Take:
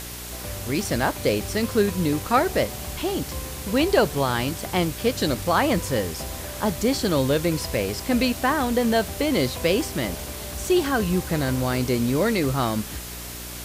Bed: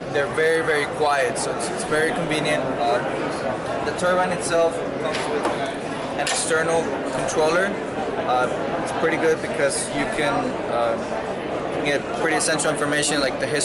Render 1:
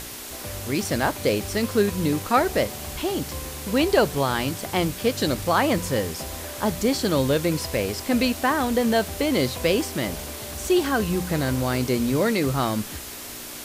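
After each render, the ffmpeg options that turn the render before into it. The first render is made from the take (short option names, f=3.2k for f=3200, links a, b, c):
-af "bandreject=f=60:t=h:w=4,bandreject=f=120:t=h:w=4,bandreject=f=180:t=h:w=4"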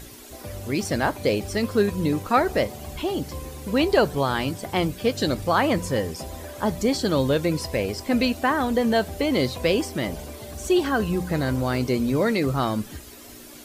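-af "afftdn=nr=11:nf=-37"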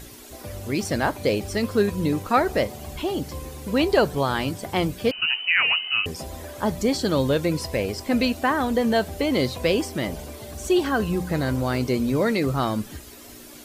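-filter_complex "[0:a]asettb=1/sr,asplit=3[a][b][c];[a]atrim=end=5.114[d];[b]atrim=start=5.11:end=6.06,asetpts=PTS-STARTPTS,afade=t=in:d=0.004:c=qsin,afade=t=out:st=0.946:d=0.004:c=qsin,lowpass=f=2.6k:t=q:w=0.5098,lowpass=f=2.6k:t=q:w=0.6013,lowpass=f=2.6k:t=q:w=0.9,lowpass=f=2.6k:t=q:w=2.563,afreqshift=-3100[e];[c]atrim=start=6.056[f];[d][e]acrossfade=d=0.004:c1=hsin:c2=qsin[g];[g][f]acrossfade=d=0.004:c1=qsin:c2=hsin"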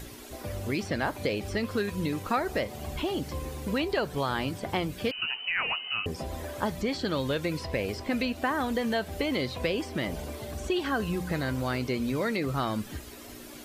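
-filter_complex "[0:a]acrossover=split=1300|3900[a][b][c];[a]acompressor=threshold=-28dB:ratio=4[d];[b]acompressor=threshold=-33dB:ratio=4[e];[c]acompressor=threshold=-49dB:ratio=4[f];[d][e][f]amix=inputs=3:normalize=0,acrossover=split=5800[g][h];[h]alimiter=level_in=16.5dB:limit=-24dB:level=0:latency=1:release=186,volume=-16.5dB[i];[g][i]amix=inputs=2:normalize=0"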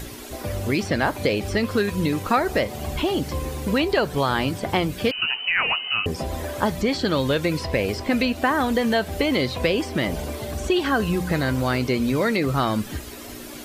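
-af "volume=7.5dB"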